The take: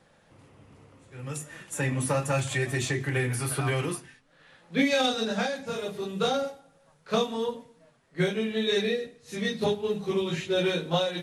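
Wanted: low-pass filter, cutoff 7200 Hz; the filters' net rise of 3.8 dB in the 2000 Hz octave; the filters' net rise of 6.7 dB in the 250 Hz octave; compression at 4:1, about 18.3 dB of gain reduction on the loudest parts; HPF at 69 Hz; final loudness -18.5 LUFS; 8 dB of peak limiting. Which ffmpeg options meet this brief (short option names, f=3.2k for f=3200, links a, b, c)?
-af "highpass=69,lowpass=7.2k,equalizer=f=250:t=o:g=8.5,equalizer=f=2k:t=o:g=4.5,acompressor=threshold=-35dB:ratio=4,volume=21dB,alimiter=limit=-9dB:level=0:latency=1"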